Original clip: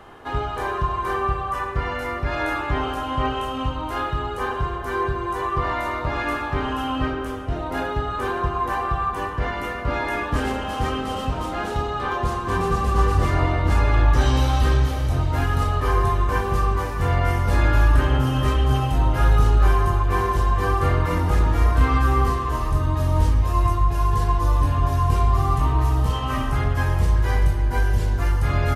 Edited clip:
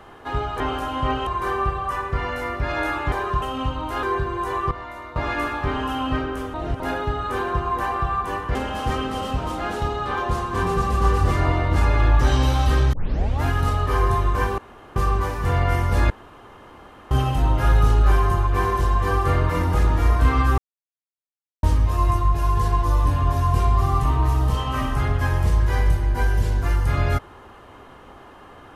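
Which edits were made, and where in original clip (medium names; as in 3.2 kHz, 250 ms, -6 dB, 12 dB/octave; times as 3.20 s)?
0.60–0.90 s: swap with 2.75–3.42 s
4.03–4.92 s: delete
5.60–6.05 s: gain -10.5 dB
7.43–7.69 s: reverse
9.44–10.49 s: delete
14.87 s: tape start 0.49 s
16.52 s: insert room tone 0.38 s
17.66–18.67 s: room tone
22.14–23.19 s: mute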